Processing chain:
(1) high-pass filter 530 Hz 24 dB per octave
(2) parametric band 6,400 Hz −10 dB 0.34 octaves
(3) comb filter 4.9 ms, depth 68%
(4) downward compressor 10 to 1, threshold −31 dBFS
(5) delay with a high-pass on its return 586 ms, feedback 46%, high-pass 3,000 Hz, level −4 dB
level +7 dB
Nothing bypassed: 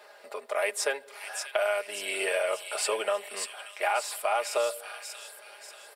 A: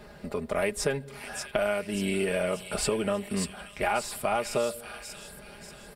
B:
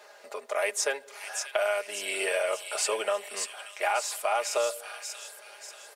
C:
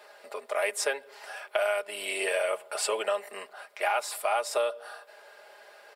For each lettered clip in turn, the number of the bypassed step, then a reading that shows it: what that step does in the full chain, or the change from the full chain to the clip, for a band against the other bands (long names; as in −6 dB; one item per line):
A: 1, 250 Hz band +19.0 dB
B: 2, 8 kHz band +3.0 dB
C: 5, echo-to-direct ratio −12.0 dB to none audible